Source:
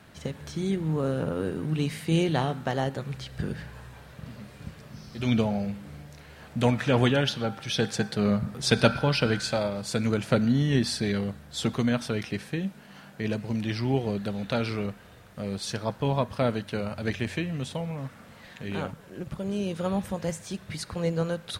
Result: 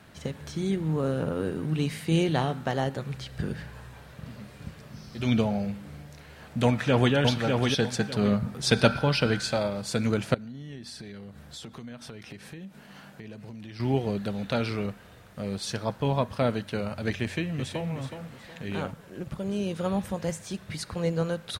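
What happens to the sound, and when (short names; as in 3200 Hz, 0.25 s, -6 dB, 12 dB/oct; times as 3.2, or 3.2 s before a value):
6.64–7.14 echo throw 0.6 s, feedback 25%, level -3.5 dB
10.34–13.8 compressor, threshold -39 dBFS
17.21–17.9 echo throw 0.37 s, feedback 35%, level -8.5 dB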